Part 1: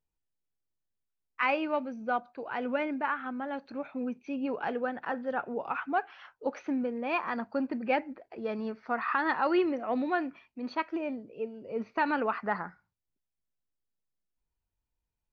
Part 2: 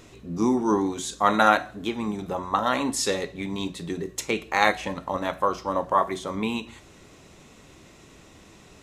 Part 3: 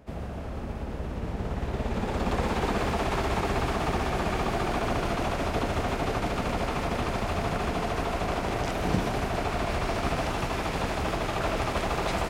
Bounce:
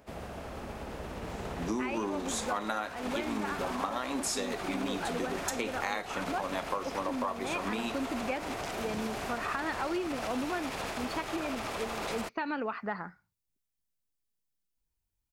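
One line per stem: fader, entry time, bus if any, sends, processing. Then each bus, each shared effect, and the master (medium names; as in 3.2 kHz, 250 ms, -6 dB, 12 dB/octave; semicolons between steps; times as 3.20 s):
+1.5 dB, 0.40 s, no send, peaking EQ 870 Hz -4.5 dB 2.9 oct
-3.0 dB, 1.30 s, no send, high-pass 170 Hz 24 dB/octave
-0.5 dB, 0.00 s, no send, bass shelf 260 Hz -11 dB; peak limiter -27.5 dBFS, peak gain reduction 10 dB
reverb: none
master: treble shelf 6.2 kHz +5.5 dB; compression 12:1, threshold -29 dBFS, peak gain reduction 15 dB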